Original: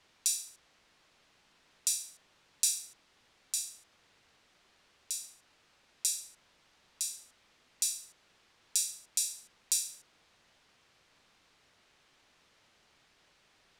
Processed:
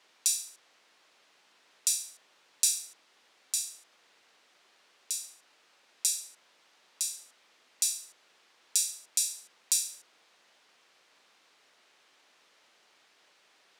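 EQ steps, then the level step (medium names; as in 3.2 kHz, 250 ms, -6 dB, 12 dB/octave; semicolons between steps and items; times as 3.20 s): high-pass 340 Hz 12 dB/octave; +3.0 dB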